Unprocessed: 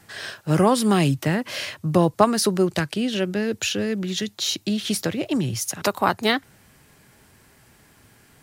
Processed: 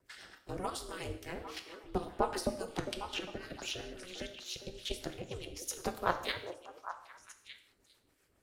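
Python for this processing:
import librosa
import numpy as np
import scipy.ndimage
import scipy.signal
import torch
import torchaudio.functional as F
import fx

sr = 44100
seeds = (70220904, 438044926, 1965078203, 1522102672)

y = fx.peak_eq(x, sr, hz=83.0, db=9.0, octaves=2.3)
y = fx.hpss(y, sr, part='harmonic', gain_db=-17)
y = fx.low_shelf(y, sr, hz=170.0, db=-8.0)
y = fx.level_steps(y, sr, step_db=11)
y = y * np.sin(2.0 * np.pi * 180.0 * np.arange(len(y)) / sr)
y = fx.rotary(y, sr, hz=7.5)
y = fx.harmonic_tremolo(y, sr, hz=3.6, depth_pct=70, crossover_hz=1200.0)
y = fx.echo_stepped(y, sr, ms=403, hz=410.0, octaves=1.4, feedback_pct=70, wet_db=-6.0)
y = fx.rev_gated(y, sr, seeds[0], gate_ms=230, shape='falling', drr_db=7.0)
y = fx.band_squash(y, sr, depth_pct=40, at=(2.35, 4.36))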